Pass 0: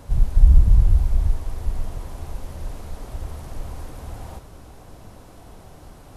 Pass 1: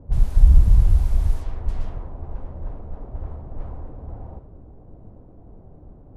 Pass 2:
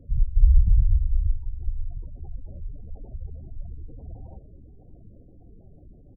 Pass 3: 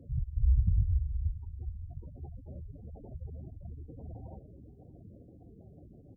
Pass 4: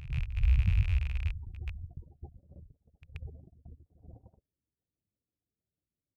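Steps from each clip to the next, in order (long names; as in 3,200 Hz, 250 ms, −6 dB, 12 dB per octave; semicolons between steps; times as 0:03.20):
low-pass that shuts in the quiet parts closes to 400 Hz, open at −13.5 dBFS
gate on every frequency bin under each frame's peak −20 dB strong; repeating echo 570 ms, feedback 37%, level −23 dB; level −4 dB
high-pass filter 83 Hz 12 dB per octave
loose part that buzzes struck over −32 dBFS, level −31 dBFS; noise gate −41 dBFS, range −41 dB; echo ahead of the sound 130 ms −12.5 dB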